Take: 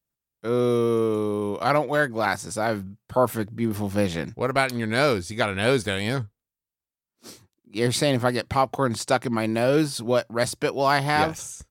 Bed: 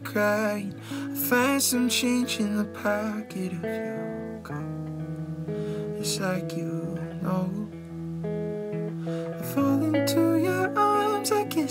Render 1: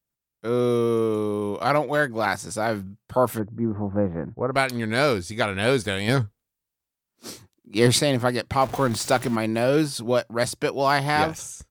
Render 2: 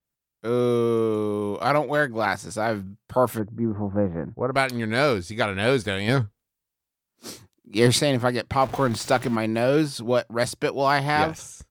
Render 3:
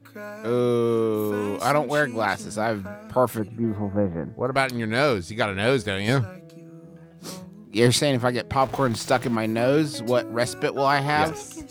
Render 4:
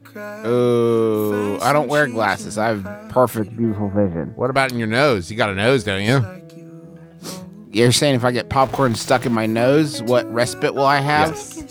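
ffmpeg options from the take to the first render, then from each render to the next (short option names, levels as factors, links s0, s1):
-filter_complex "[0:a]asplit=3[s0][s1][s2];[s0]afade=t=out:st=3.38:d=0.02[s3];[s1]lowpass=f=1300:w=0.5412,lowpass=f=1300:w=1.3066,afade=t=in:st=3.38:d=0.02,afade=t=out:st=4.52:d=0.02[s4];[s2]afade=t=in:st=4.52:d=0.02[s5];[s3][s4][s5]amix=inputs=3:normalize=0,asettb=1/sr,asplit=3[s6][s7][s8];[s6]atrim=end=6.084[s9];[s7]atrim=start=6.08:end=7.99,asetpts=PTS-STARTPTS,afade=t=in:d=0.004:c=qsin,afade=t=out:st=1.906:d=0.004:c=qsin,acontrast=39[s10];[s8]atrim=start=7.986[s11];[s9][s10]acrossfade=d=0.004:c1=hsin:c2=qsin[s12];[s12][s11]acrossfade=d=0.004:c1=qsin:c2=hsin,asettb=1/sr,asplit=3[s13][s14][s15];[s13]atrim=end=8.614[s16];[s14]atrim=start=8.61:end=9.36,asetpts=PTS-STARTPTS,afade=t=in:d=0.004:c=qsin,afade=t=out:st=0.746:d=0.004:c=qsin,aeval=exprs='val(0)+0.5*0.0282*sgn(val(0))':c=same[s17];[s15]atrim=start=9.356[s18];[s16][s17]acrossfade=d=0.004:c1=hsin:c2=qsin[s19];[s19][s18]acrossfade=d=0.004:c1=qsin:c2=hsin"
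-af "adynamicequalizer=threshold=0.00794:dfrequency=5100:dqfactor=0.7:tfrequency=5100:tqfactor=0.7:attack=5:release=100:ratio=0.375:range=3:mode=cutabove:tftype=highshelf"
-filter_complex "[1:a]volume=0.211[s0];[0:a][s0]amix=inputs=2:normalize=0"
-af "volume=1.88,alimiter=limit=0.794:level=0:latency=1"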